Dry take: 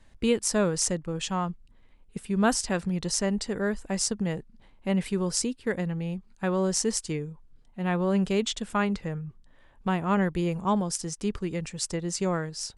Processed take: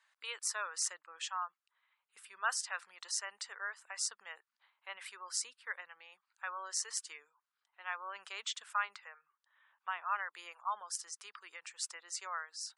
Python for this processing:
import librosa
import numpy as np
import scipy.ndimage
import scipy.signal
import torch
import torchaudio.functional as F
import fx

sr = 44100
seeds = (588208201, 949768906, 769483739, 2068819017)

y = fx.ladder_highpass(x, sr, hz=1000.0, resonance_pct=40)
y = fx.spec_gate(y, sr, threshold_db=-25, keep='strong')